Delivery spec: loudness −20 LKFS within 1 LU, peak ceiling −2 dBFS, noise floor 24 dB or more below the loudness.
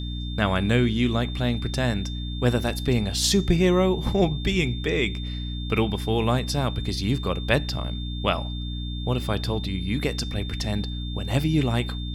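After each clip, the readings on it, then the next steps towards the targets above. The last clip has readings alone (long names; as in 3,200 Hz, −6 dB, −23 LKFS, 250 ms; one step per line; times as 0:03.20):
mains hum 60 Hz; hum harmonics up to 300 Hz; level of the hum −28 dBFS; interfering tone 3,600 Hz; level of the tone −38 dBFS; integrated loudness −25.0 LKFS; sample peak −5.5 dBFS; target loudness −20.0 LKFS
→ hum removal 60 Hz, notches 5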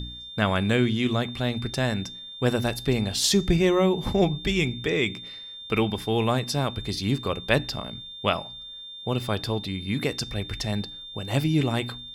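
mains hum none found; interfering tone 3,600 Hz; level of the tone −38 dBFS
→ notch filter 3,600 Hz, Q 30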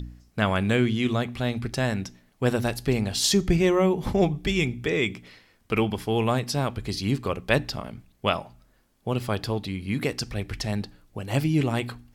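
interfering tone none found; integrated loudness −26.0 LKFS; sample peak −6.0 dBFS; target loudness −20.0 LKFS
→ level +6 dB
brickwall limiter −2 dBFS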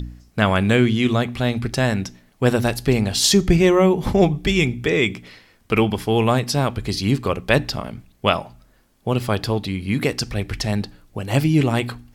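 integrated loudness −20.0 LKFS; sample peak −2.0 dBFS; background noise floor −57 dBFS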